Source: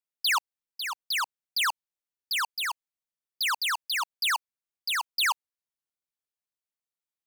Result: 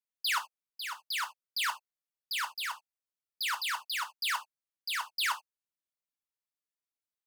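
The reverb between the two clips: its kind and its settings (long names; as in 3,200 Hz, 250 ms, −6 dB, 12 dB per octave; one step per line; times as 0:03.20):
reverb whose tail is shaped and stops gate 100 ms falling, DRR 5 dB
level −6.5 dB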